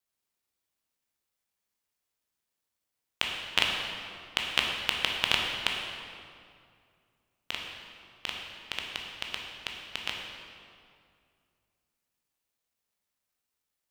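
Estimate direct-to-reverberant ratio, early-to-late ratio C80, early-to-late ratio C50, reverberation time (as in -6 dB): -0.5 dB, 3.0 dB, 1.5 dB, 2.3 s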